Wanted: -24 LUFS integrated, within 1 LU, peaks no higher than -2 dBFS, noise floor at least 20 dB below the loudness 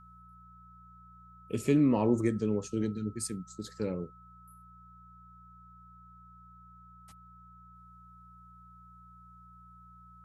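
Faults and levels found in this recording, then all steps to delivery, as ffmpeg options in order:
hum 60 Hz; harmonics up to 180 Hz; hum level -55 dBFS; steady tone 1300 Hz; tone level -54 dBFS; loudness -31.0 LUFS; peak -14.0 dBFS; loudness target -24.0 LUFS
-> -af "bandreject=f=60:t=h:w=4,bandreject=f=120:t=h:w=4,bandreject=f=180:t=h:w=4"
-af "bandreject=f=1.3k:w=30"
-af "volume=7dB"

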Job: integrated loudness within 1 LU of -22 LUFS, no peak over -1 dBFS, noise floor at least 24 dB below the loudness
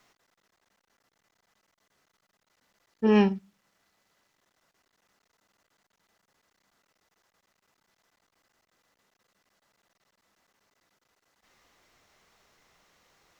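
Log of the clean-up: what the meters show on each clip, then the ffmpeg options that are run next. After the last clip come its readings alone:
loudness -24.5 LUFS; peak -11.5 dBFS; loudness target -22.0 LUFS
-> -af "volume=2.5dB"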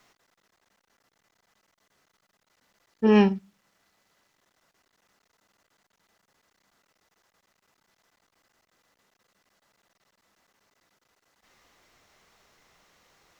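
loudness -22.0 LUFS; peak -9.0 dBFS; noise floor -75 dBFS

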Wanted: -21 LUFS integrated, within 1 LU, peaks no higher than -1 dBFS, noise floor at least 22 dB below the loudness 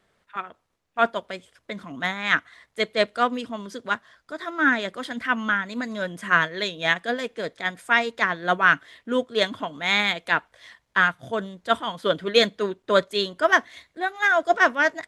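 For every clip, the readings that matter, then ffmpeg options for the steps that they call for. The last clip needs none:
loudness -23.5 LUFS; peak -4.5 dBFS; loudness target -21.0 LUFS
-> -af "volume=2.5dB"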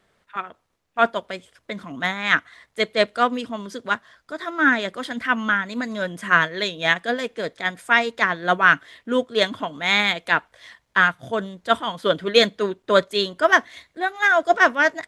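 loudness -21.0 LUFS; peak -2.0 dBFS; noise floor -70 dBFS

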